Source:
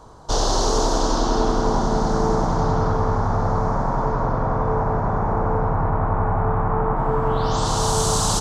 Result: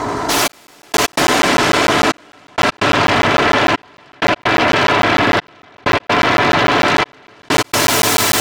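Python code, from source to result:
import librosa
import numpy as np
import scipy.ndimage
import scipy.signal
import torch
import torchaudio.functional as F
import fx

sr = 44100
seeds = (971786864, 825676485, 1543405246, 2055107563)

p1 = fx.lower_of_two(x, sr, delay_ms=3.0)
p2 = fx.fold_sine(p1, sr, drive_db=19, ceiling_db=-8.0)
p3 = p1 + F.gain(torch.from_numpy(p2), -4.5).numpy()
p4 = scipy.signal.sosfilt(scipy.signal.butter(2, 120.0, 'highpass', fs=sr, output='sos'), p3)
p5 = fx.high_shelf(p4, sr, hz=4600.0, db=-7.0)
p6 = p5 + 10.0 ** (-3.5 / 20.0) * np.pad(p5, (int(83 * sr / 1000.0), 0))[:len(p5)]
p7 = fx.step_gate(p6, sr, bpm=128, pattern='xxxx....x.xxxx', floor_db=-60.0, edge_ms=4.5)
p8 = p7 + 0.3 * np.pad(p7, (int(6.9 * sr / 1000.0), 0))[:len(p7)]
p9 = fx.buffer_crackle(p8, sr, first_s=0.52, period_s=0.15, block=512, kind='zero')
y = fx.env_flatten(p9, sr, amount_pct=50)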